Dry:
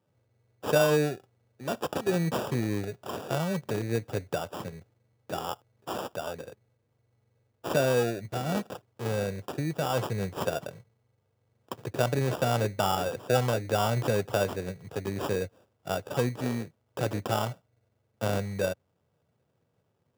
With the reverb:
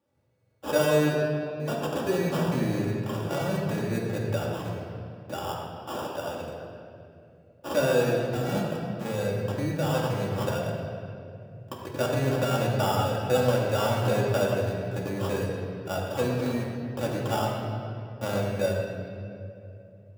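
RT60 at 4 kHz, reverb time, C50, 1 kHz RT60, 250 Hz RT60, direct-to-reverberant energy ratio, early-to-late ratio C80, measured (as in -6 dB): 1.7 s, 2.6 s, 1.0 dB, 2.2 s, 3.7 s, -4.0 dB, 2.0 dB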